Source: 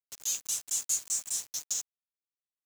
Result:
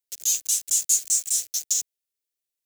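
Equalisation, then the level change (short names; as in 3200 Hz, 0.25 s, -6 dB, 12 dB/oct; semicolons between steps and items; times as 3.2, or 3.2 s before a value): high shelf 4600 Hz +6 dB; fixed phaser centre 420 Hz, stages 4; +5.0 dB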